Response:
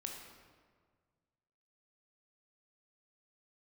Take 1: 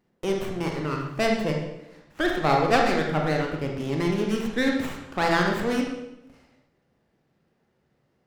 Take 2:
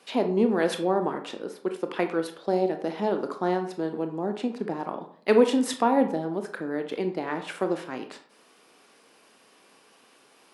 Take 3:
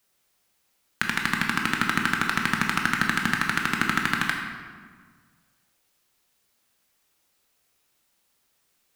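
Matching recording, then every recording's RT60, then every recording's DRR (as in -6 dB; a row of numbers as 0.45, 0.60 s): 3; 0.90, 0.55, 1.7 s; 0.5, 6.0, 1.0 dB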